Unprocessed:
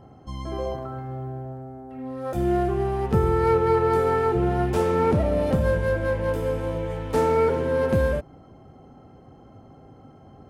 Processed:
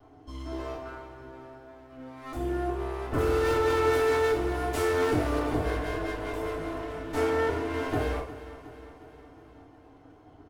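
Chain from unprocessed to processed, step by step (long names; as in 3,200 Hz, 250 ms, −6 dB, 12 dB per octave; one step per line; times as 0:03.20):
lower of the sound and its delayed copy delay 2.8 ms
0:03.18–0:05.39: high-shelf EQ 3,600 Hz +9 dB
repeating echo 361 ms, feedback 59%, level −15 dB
feedback delay network reverb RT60 0.45 s, low-frequency decay 0.7×, high-frequency decay 0.8×, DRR −2 dB
level −8 dB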